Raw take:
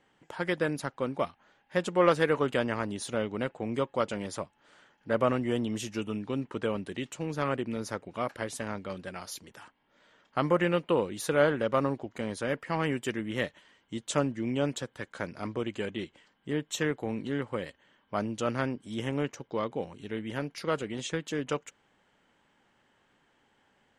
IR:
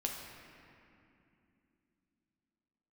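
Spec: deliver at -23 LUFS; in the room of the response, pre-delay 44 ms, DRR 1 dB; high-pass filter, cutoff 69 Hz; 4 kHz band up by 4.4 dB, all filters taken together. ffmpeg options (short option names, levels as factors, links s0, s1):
-filter_complex "[0:a]highpass=69,equalizer=f=4000:t=o:g=6,asplit=2[s0][s1];[1:a]atrim=start_sample=2205,adelay=44[s2];[s1][s2]afir=irnorm=-1:irlink=0,volume=0.708[s3];[s0][s3]amix=inputs=2:normalize=0,volume=2"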